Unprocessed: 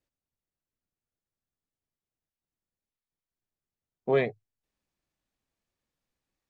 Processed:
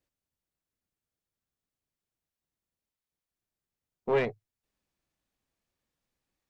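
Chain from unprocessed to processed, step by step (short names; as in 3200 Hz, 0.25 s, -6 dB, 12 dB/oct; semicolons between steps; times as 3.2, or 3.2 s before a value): one diode to ground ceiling -25.5 dBFS; gain +1 dB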